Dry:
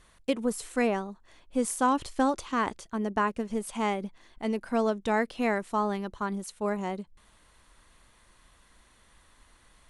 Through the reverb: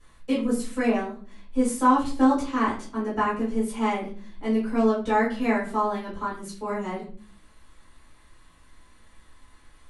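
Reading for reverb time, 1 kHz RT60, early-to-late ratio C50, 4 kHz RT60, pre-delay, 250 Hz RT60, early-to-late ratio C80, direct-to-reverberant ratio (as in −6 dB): 0.45 s, 0.40 s, 7.0 dB, 0.30 s, 4 ms, 0.70 s, 12.5 dB, −10.5 dB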